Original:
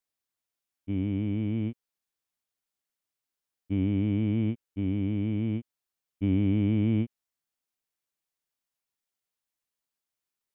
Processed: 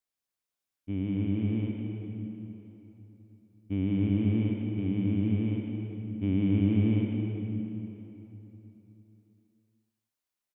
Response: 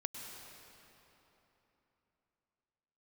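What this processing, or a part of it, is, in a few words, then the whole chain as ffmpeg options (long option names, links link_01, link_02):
cave: -filter_complex "[0:a]aecho=1:1:177:0.224[link_01];[1:a]atrim=start_sample=2205[link_02];[link_01][link_02]afir=irnorm=-1:irlink=0"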